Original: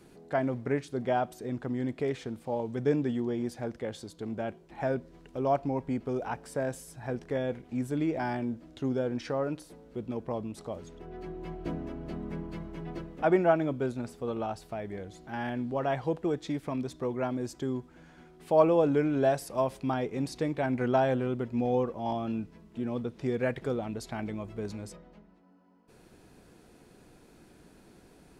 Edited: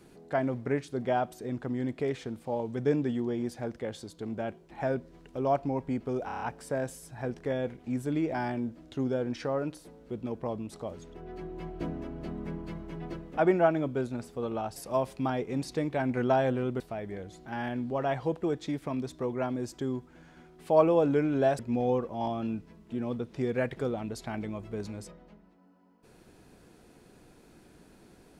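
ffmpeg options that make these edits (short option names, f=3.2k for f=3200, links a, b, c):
-filter_complex "[0:a]asplit=9[a][b][c][d][e][f][g][h][i];[a]atrim=end=6.292[j];[b]atrim=start=6.258:end=6.292[k];[c]atrim=start=6.258:end=6.292[l];[d]atrim=start=6.258:end=6.292[m];[e]atrim=start=6.258:end=6.292[n];[f]atrim=start=6.258:end=14.612[o];[g]atrim=start=19.398:end=21.442[p];[h]atrim=start=14.608:end=19.402[q];[i]atrim=start=21.438[r];[j][k]acrossfade=d=0.004:c1=hsin:c2=hsin[s];[s][l]acrossfade=d=0.004:c1=hsin:c2=hsin[t];[t][m]acrossfade=d=0.004:c1=hsin:c2=hsin[u];[u][n]acrossfade=d=0.004:c1=hsin:c2=hsin[v];[v][o]acrossfade=d=0.004:c1=hsin:c2=hsin[w];[w][p]acrossfade=d=0.004:c1=hsin:c2=hsin[x];[x][q]acrossfade=d=0.004:c1=hsin:c2=hsin[y];[y][r]acrossfade=d=0.004:c1=hsin:c2=hsin"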